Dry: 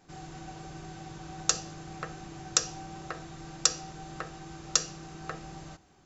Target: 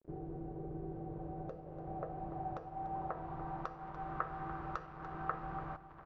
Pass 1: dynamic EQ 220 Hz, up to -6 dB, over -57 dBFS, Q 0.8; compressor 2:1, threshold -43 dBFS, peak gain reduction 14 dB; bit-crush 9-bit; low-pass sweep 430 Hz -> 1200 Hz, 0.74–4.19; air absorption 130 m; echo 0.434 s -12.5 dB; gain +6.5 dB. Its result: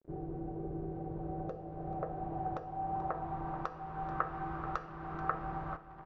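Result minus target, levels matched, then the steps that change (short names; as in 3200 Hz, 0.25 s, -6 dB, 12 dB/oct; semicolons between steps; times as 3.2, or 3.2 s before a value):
echo 0.143 s late; compressor: peak gain reduction -4 dB
change: compressor 2:1, threshold -51 dBFS, peak gain reduction 18 dB; change: echo 0.291 s -12.5 dB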